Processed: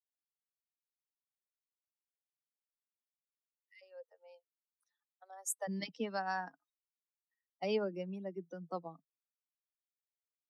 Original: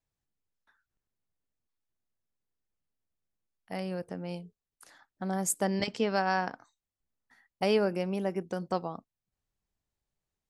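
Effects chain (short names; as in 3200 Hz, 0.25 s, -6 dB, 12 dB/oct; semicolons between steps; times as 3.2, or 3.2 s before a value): per-bin expansion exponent 2; steep high-pass 1900 Hz 96 dB/oct, from 3.81 s 430 Hz, from 5.67 s 150 Hz; gain -6 dB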